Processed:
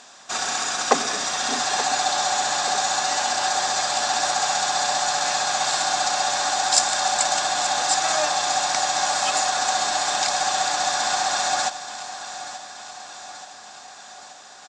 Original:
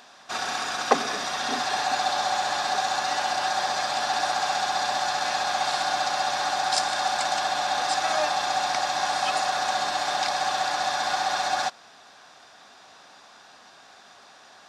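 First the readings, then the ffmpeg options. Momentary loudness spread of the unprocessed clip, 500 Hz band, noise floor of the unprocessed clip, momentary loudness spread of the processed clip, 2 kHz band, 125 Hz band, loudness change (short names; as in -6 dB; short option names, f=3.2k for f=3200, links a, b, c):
2 LU, +2.0 dB, -51 dBFS, 17 LU, +2.0 dB, +2.0 dB, +4.0 dB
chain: -af "lowpass=f=7.5k:t=q:w=4.8,aecho=1:1:879|1758|2637|3516|4395|5274:0.224|0.128|0.0727|0.0415|0.0236|0.0135,volume=1.5dB"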